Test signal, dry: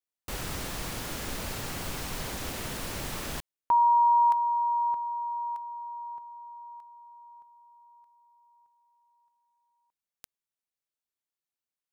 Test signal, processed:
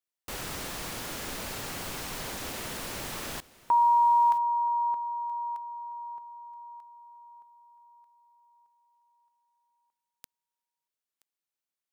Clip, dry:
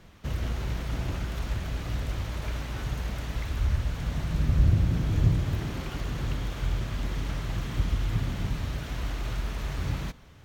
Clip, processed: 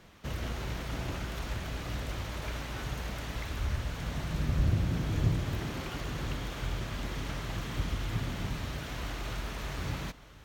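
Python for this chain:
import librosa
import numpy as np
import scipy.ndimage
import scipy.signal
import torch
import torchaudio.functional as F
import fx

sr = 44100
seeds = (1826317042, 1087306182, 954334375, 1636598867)

p1 = fx.low_shelf(x, sr, hz=160.0, db=-8.0)
y = p1 + fx.echo_single(p1, sr, ms=975, db=-20.5, dry=0)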